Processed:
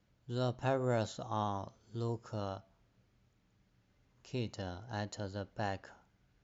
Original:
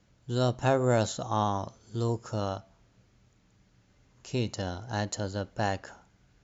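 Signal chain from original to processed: LPF 5500 Hz 12 dB/oct; gain -8 dB

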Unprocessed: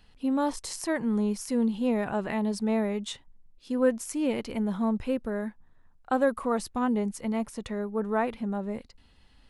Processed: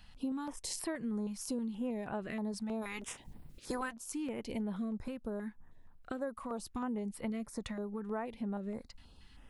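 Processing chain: 2.81–3.92 spectral limiter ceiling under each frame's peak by 23 dB; compressor 6:1, threshold -37 dBFS, peak gain reduction 19 dB; stepped notch 6.3 Hz 400–6400 Hz; gain +2 dB

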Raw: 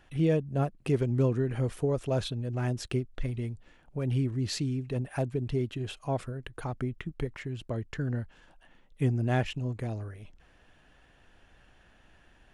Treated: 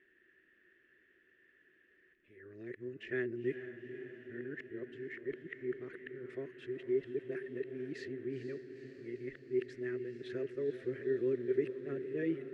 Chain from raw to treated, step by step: whole clip reversed; double band-pass 830 Hz, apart 2.3 oct; diffused feedback echo 0.471 s, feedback 66%, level -10 dB; gain +2 dB

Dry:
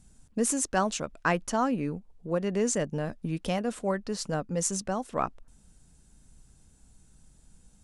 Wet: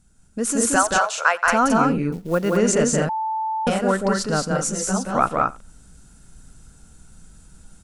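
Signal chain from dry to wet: 0.76–1.45 inverse Chebyshev high-pass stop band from 280 Hz, stop band 40 dB; loudspeakers at several distances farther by 61 m -3 dB, 75 m -4 dB; AGC gain up to 9 dB; bell 1400 Hz +11 dB 0.21 oct; echo 89 ms -22.5 dB; 2.12–2.57 companded quantiser 6-bit; 3.09–3.67 bleep 880 Hz -20 dBFS; 4.57–5.15 ensemble effect; gain -1.5 dB

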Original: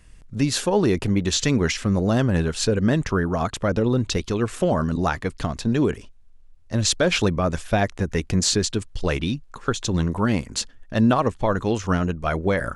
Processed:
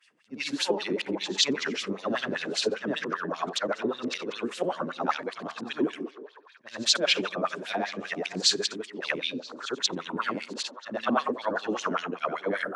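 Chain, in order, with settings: short-time reversal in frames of 0.185 s; HPF 140 Hz 24 dB/oct; tilt shelf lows -6.5 dB, about 760 Hz; delay with a stepping band-pass 0.141 s, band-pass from 240 Hz, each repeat 0.7 oct, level -5 dB; LFO band-pass sine 5.1 Hz 270–4100 Hz; gain +5 dB

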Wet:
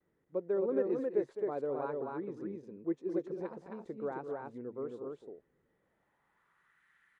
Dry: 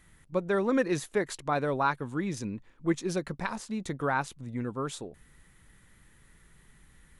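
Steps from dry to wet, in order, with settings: loudspeakers at several distances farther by 72 m -11 dB, 91 m -3 dB; gate with hold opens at -53 dBFS; band-pass sweep 430 Hz -> 1600 Hz, 5.63–6.85; gain -2.5 dB

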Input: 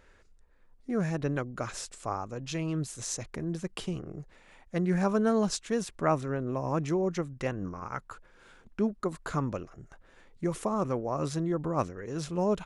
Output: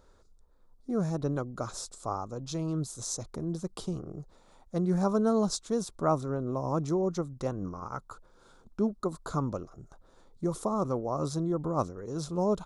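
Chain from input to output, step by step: band shelf 2200 Hz -14.5 dB 1.1 oct

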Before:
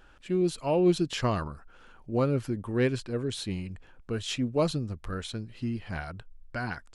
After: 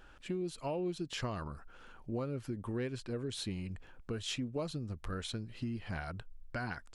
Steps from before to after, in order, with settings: compressor 5:1, threshold -34 dBFS, peak gain reduction 14.5 dB; gain -1 dB

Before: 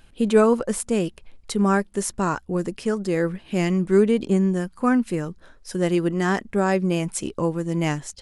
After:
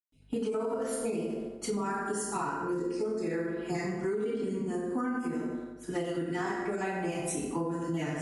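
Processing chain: random spectral dropouts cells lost 28%; bell 82 Hz -6.5 dB 2.1 oct; darkening echo 87 ms, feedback 73%, low-pass 1100 Hz, level -5.5 dB; gate -31 dBFS, range -10 dB; hum 50 Hz, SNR 34 dB; reverb RT60 0.95 s, pre-delay 0.123 s; limiter -16.5 dBFS, peak gain reduction 10 dB; compressor, threshold -31 dBFS, peak gain reduction 10.5 dB; ending taper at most 140 dB/s; gain +1.5 dB

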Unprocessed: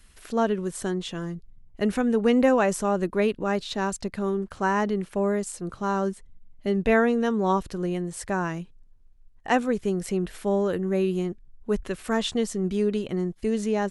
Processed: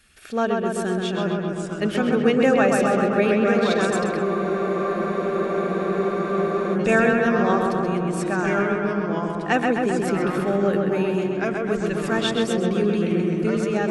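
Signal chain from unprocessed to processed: bell 2200 Hz +6 dB 1.9 oct; notch comb 1000 Hz; echoes that change speed 0.75 s, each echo -2 st, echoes 2, each echo -6 dB; on a send: darkening echo 0.13 s, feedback 76%, low-pass 3600 Hz, level -3 dB; on the sum: spectral freeze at 4.24, 2.51 s

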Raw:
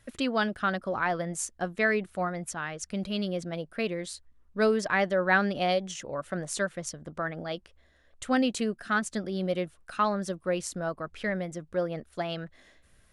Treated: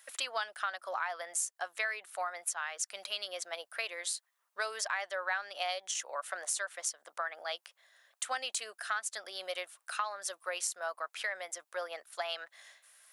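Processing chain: HPF 730 Hz 24 dB/oct; high shelf 6700 Hz +11.5 dB; compressor 5:1, threshold -34 dBFS, peak gain reduction 14.5 dB; gain +2 dB

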